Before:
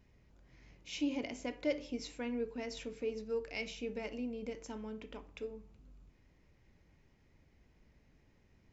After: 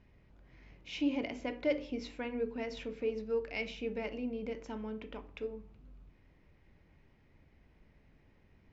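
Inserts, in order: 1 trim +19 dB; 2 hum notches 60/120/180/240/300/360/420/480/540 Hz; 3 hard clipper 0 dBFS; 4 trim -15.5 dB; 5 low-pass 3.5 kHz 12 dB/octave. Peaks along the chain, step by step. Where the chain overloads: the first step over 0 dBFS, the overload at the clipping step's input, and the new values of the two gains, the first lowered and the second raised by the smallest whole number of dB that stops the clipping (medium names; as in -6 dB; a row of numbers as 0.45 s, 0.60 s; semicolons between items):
-4.0 dBFS, -4.0 dBFS, -4.0 dBFS, -19.5 dBFS, -20.0 dBFS; nothing clips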